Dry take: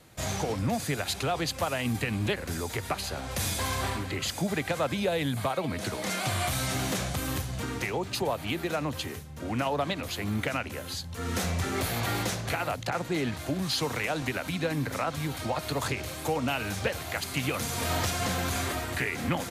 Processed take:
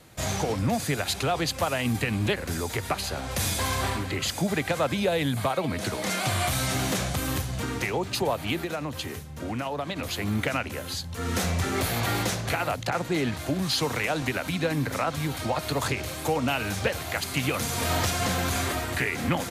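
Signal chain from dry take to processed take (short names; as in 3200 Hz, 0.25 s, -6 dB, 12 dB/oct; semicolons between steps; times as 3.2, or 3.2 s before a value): 8.61–9.96 compressor 3:1, threshold -32 dBFS, peak gain reduction 6.5 dB; gain +3 dB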